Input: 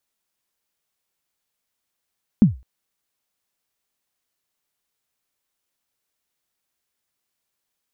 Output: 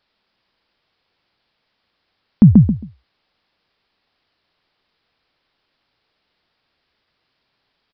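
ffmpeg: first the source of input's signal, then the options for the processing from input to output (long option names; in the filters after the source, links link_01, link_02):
-f lavfi -i "aevalsrc='0.596*pow(10,-3*t/0.28)*sin(2*PI*(240*0.138/log(62/240)*(exp(log(62/240)*min(t,0.138)/0.138)-1)+62*max(t-0.138,0)))':duration=0.21:sample_rate=44100"
-filter_complex "[0:a]aresample=11025,aresample=44100,asplit=2[link_01][link_02];[link_02]adelay=135,lowpass=frequency=940:poles=1,volume=-3dB,asplit=2[link_03][link_04];[link_04]adelay=135,lowpass=frequency=940:poles=1,volume=0.19,asplit=2[link_05][link_06];[link_06]adelay=135,lowpass=frequency=940:poles=1,volume=0.19[link_07];[link_03][link_05][link_07]amix=inputs=3:normalize=0[link_08];[link_01][link_08]amix=inputs=2:normalize=0,alimiter=level_in=14dB:limit=-1dB:release=50:level=0:latency=1"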